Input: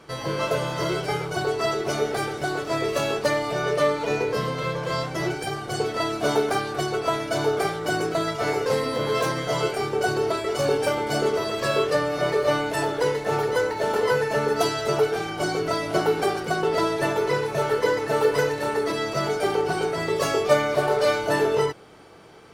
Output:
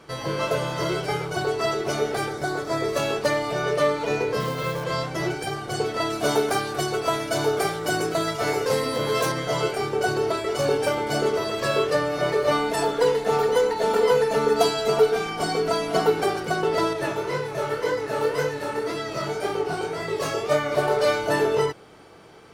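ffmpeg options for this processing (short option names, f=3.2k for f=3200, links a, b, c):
-filter_complex "[0:a]asettb=1/sr,asplit=3[a][b][c];[a]atrim=end=2.294[d];[b]atrim=start=2.29:end=2.97,asetpts=PTS-STARTPTS,afade=t=in:d=0.004:c=qsin,afade=t=out:st=0.676:d=0.004:c=qsin,equalizer=f=2.8k:w=4.1:g=-10[e];[c]atrim=start=2.966[f];[d][e]acrossfade=d=0.004:c1=hsin:c2=qsin[g];[g][f]acrossfade=d=0.004:c1=qsin:c2=hsin,asettb=1/sr,asplit=3[h][i][j];[h]atrim=end=4.404[k];[i]atrim=start=4.4:end=4.84,asetpts=PTS-STARTPTS,afade=t=in:d=0.004:c=qsin,afade=t=out:st=0.436:d=0.004:c=qsin,acrusher=bits=4:mode=log:mix=0:aa=0.000001[l];[j]atrim=start=4.836[m];[k][l]acrossfade=d=0.004:c1=hsin:c2=qsin[n];[n][m]acrossfade=d=0.004:c1=qsin:c2=hsin,asettb=1/sr,asplit=3[o][p][q];[o]atrim=end=6.104[r];[p]atrim=start=6.1:end=9.32,asetpts=PTS-STARTPTS,afade=t=in:d=0.004:c=qsin,afade=t=out:st=3.216:d=0.004:c=qsin,highshelf=f=6k:g=7[s];[q]atrim=start=9.316[t];[r][s]acrossfade=d=0.004:c1=hsin:c2=qsin[u];[u][t]acrossfade=d=0.004:c1=qsin:c2=hsin,asettb=1/sr,asplit=3[v][w][x];[v]atrim=end=12.514[y];[w]atrim=start=12.51:end=16.1,asetpts=PTS-STARTPTS,afade=t=in:d=0.004:c=qsin,afade=t=out:st=3.586:d=0.004:c=qsin,aecho=1:1:4.3:0.65,atrim=end_sample=158319[z];[x]atrim=start=16.096[aa];[y][z]acrossfade=d=0.004:c1=hsin:c2=qsin[ab];[ab][aa]acrossfade=d=0.004:c1=qsin:c2=hsin,asettb=1/sr,asplit=3[ac][ad][ae];[ac]atrim=end=16.934[af];[ad]atrim=start=16.93:end=20.72,asetpts=PTS-STARTPTS,afade=t=in:d=0.004:c=qsin,afade=t=out:st=3.786:d=0.004:c=qsin,flanger=delay=19.5:depth=7.6:speed=1.9[ag];[ae]atrim=start=20.716[ah];[af][ag]acrossfade=d=0.004:c1=hsin:c2=qsin[ai];[ai][ah]acrossfade=d=0.004:c1=qsin:c2=hsin"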